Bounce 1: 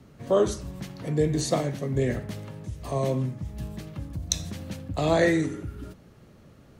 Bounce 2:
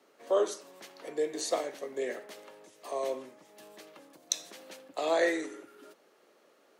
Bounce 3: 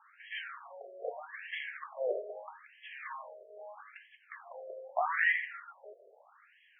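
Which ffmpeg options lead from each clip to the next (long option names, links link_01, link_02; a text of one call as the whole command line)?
ffmpeg -i in.wav -af "highpass=frequency=380:width=0.5412,highpass=frequency=380:width=1.3066,volume=-4dB" out.wav
ffmpeg -i in.wav -filter_complex "[0:a]asplit=2[link_01][link_02];[link_02]highpass=frequency=720:poles=1,volume=22dB,asoftclip=type=tanh:threshold=-9dB[link_03];[link_01][link_03]amix=inputs=2:normalize=0,lowpass=frequency=3800:poles=1,volume=-6dB,afftfilt=real='re*between(b*sr/1024,490*pow(2400/490,0.5+0.5*sin(2*PI*0.79*pts/sr))/1.41,490*pow(2400/490,0.5+0.5*sin(2*PI*0.79*pts/sr))*1.41)':imag='im*between(b*sr/1024,490*pow(2400/490,0.5+0.5*sin(2*PI*0.79*pts/sr))/1.41,490*pow(2400/490,0.5+0.5*sin(2*PI*0.79*pts/sr))*1.41)':win_size=1024:overlap=0.75,volume=-4.5dB" out.wav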